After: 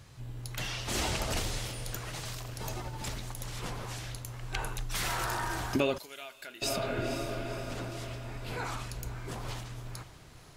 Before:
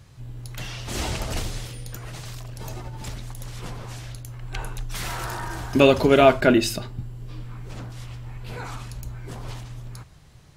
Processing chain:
low-shelf EQ 300 Hz −5 dB
feedback delay with all-pass diffusion 500 ms, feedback 51%, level −15 dB
downward compressor 4 to 1, threshold −27 dBFS, peak gain reduction 14.5 dB
0:05.98–0:06.62: first-order pre-emphasis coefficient 0.97

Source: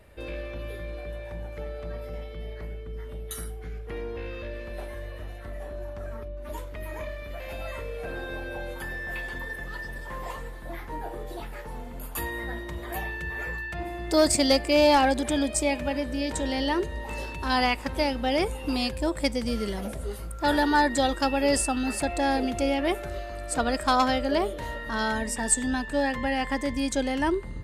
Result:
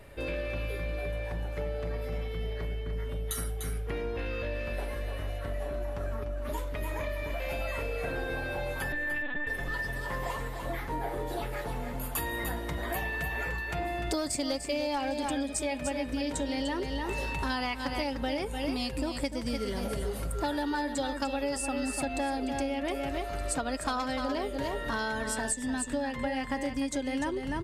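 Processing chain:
0:08.92–0:09.47: linear-prediction vocoder at 8 kHz pitch kept
comb filter 7.2 ms, depth 32%
on a send: single-tap delay 297 ms −8 dB
on the sum: downward compressor 10 to 1, threshold −32 dBFS, peak gain reduction 17.5 dB
level +3.5 dB

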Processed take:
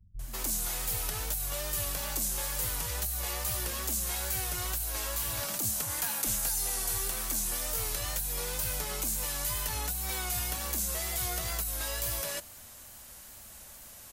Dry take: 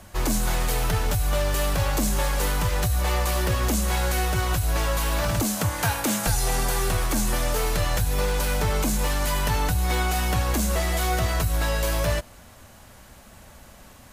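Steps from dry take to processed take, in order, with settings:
first-order pre-emphasis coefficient 0.8
in parallel at −2 dB: compressor whose output falls as the input rises −39 dBFS
on the sum: multiband delay without the direct sound lows, highs 190 ms, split 170 Hz
tape wow and flutter 58 cents
level −3.5 dB

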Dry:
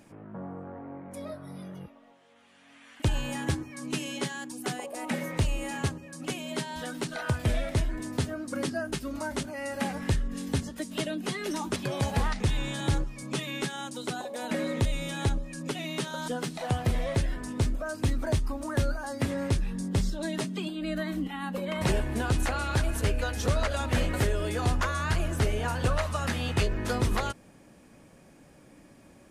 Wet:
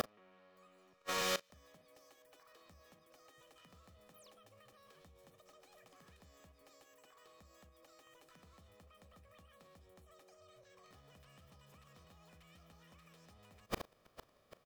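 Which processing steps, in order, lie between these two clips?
compressor on every frequency bin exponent 0.6
comb filter 3.3 ms, depth 40%
downward compressor, threshold −26 dBFS, peak gain reduction 8 dB
sound drawn into the spectrogram fall, 0:08.28–0:08.60, 1,400–10,000 Hz −32 dBFS
gate with flip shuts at −30 dBFS, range −41 dB
on a send: single-tap delay 75 ms −17.5 dB
on the sum: wrong playback speed 7.5 ips tape played at 15 ips
level +7.5 dB

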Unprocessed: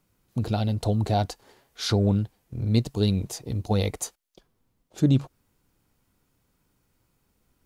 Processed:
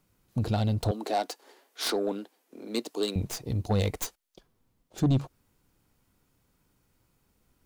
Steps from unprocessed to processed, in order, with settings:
stylus tracing distortion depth 0.082 ms
0:00.91–0:03.16: Butterworth high-pass 270 Hz 36 dB per octave
soft clipping −18 dBFS, distortion −13 dB

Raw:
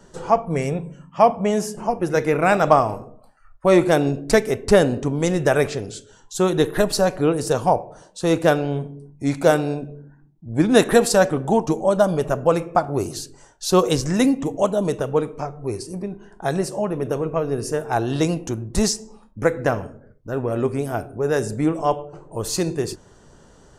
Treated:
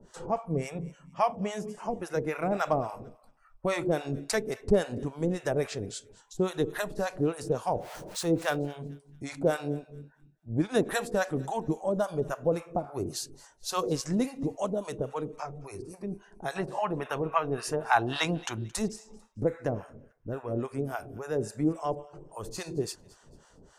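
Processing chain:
0:07.75–0:08.56: converter with a step at zero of −31 dBFS
0:16.56–0:18.58: flat-topped bell 1,700 Hz +11.5 dB 2.8 octaves
in parallel at −1 dB: downward compressor, threshold −25 dBFS, peak gain reduction 17 dB
on the sum: two-band tremolo in antiphase 3.6 Hz, depth 100%, crossover 680 Hz
delay with a high-pass on its return 222 ms, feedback 32%, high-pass 1,500 Hz, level −21.5 dB
level −8 dB

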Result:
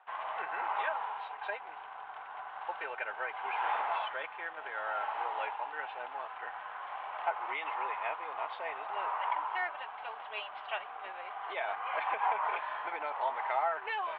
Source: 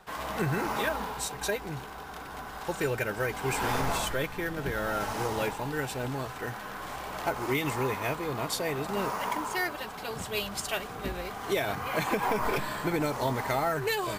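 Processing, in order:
four-pole ladder high-pass 680 Hz, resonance 45%
in parallel at −6.5 dB: dead-zone distortion −53.5 dBFS
on the sum: Butterworth low-pass 3,200 Hz 48 dB per octave

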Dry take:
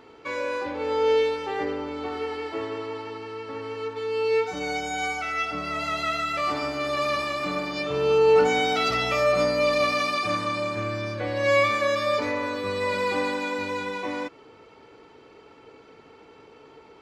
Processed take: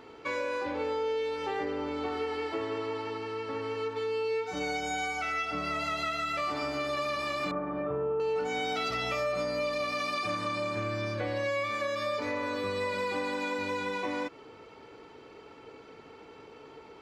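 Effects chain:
0:07.51–0:08.20: low-pass filter 1,500 Hz 24 dB per octave
downward compressor 6 to 1, threshold −29 dBFS, peak gain reduction 14 dB

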